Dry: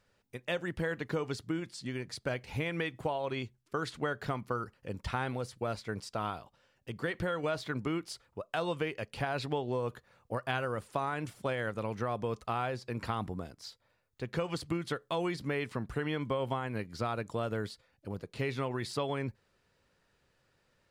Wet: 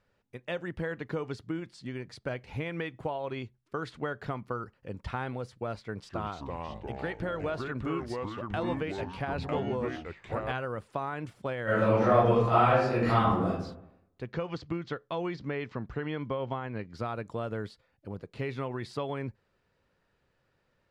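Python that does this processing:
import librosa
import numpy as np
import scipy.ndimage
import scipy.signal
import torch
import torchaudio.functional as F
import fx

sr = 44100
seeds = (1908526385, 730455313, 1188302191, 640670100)

y = fx.echo_pitch(x, sr, ms=237, semitones=-4, count=3, db_per_echo=-3.0, at=(5.79, 10.52))
y = fx.reverb_throw(y, sr, start_s=11.64, length_s=1.86, rt60_s=0.8, drr_db=-12.0)
y = fx.steep_lowpass(y, sr, hz=6600.0, slope=36, at=(14.24, 16.94))
y = fx.lowpass(y, sr, hz=2500.0, slope=6)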